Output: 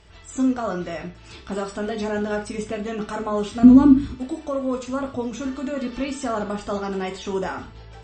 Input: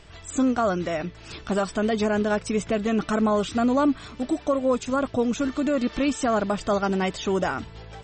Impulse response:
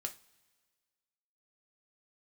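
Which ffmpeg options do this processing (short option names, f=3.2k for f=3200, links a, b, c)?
-filter_complex "[0:a]asettb=1/sr,asplit=3[a][b][c];[a]atrim=end=3.634[d];[b]atrim=start=3.63:end=4.14,asetpts=PTS-STARTPTS,afade=t=in:d=0.004:c=qsin,afade=t=out:st=0.506:d=0.004:c=qsin,lowshelf=f=390:t=q:w=1.5:g=13.5[e];[c]atrim=start=4.136[f];[d][e]acrossfade=d=0.004:c1=hsin:c2=qsin[g];[g][f]acrossfade=d=0.004:c1=qsin:c2=hsin[h];[1:a]atrim=start_sample=2205,afade=t=out:st=0.15:d=0.01,atrim=end_sample=7056,asetrate=29547,aresample=44100[i];[h][i]afir=irnorm=-1:irlink=0,volume=-4dB"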